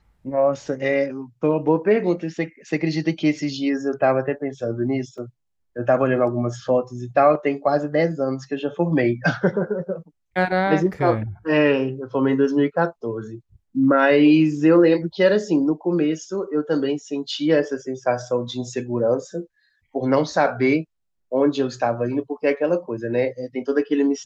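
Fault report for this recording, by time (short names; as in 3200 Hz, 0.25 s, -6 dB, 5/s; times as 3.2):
5.18 gap 3.9 ms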